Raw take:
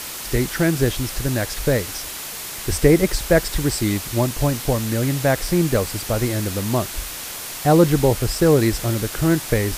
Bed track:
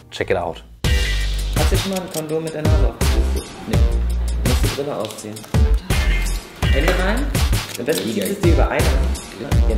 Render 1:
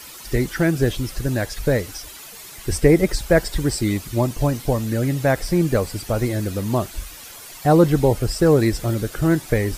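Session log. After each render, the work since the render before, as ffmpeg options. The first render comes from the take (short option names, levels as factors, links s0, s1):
-af "afftdn=nr=11:nf=-32"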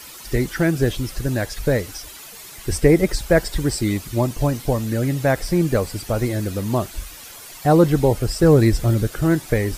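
-filter_complex "[0:a]asettb=1/sr,asplit=3[s0][s1][s2];[s0]atrim=end=8.434[s3];[s1]atrim=start=8.43:end=9.07,asetpts=PTS-STARTPTS,afade=t=in:d=0.004:c=qsin,afade=t=out:st=0.636:d=0.004:c=qsin,lowshelf=f=160:g=8[s4];[s2]atrim=start=9.066[s5];[s3][s4]acrossfade=d=0.004:c1=hsin:c2=qsin[s6];[s6][s5]acrossfade=d=0.004:c1=qsin:c2=hsin"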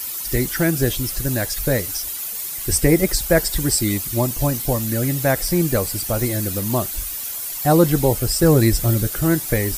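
-af "aemphasis=mode=production:type=50fm,bandreject=f=440:w=13"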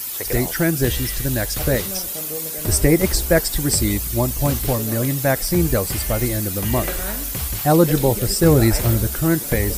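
-filter_complex "[1:a]volume=0.299[s0];[0:a][s0]amix=inputs=2:normalize=0"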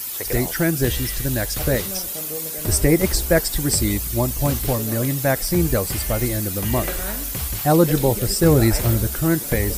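-af "volume=0.891,alimiter=limit=0.708:level=0:latency=1"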